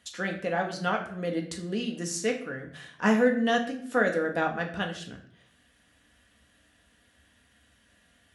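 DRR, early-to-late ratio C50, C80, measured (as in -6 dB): 1.5 dB, 9.5 dB, 13.0 dB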